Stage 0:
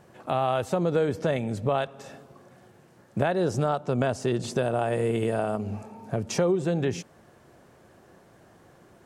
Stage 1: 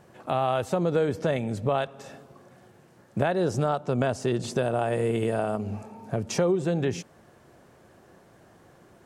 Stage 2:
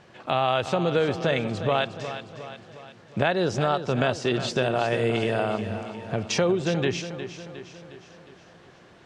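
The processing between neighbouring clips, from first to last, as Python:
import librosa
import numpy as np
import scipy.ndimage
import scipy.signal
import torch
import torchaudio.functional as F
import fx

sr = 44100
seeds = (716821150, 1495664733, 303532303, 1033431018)

y1 = x
y2 = scipy.signal.sosfilt(scipy.signal.butter(2, 5900.0, 'lowpass', fs=sr, output='sos'), y1)
y2 = fx.peak_eq(y2, sr, hz=3300.0, db=10.0, octaves=2.2)
y2 = fx.echo_feedback(y2, sr, ms=359, feedback_pct=53, wet_db=-11)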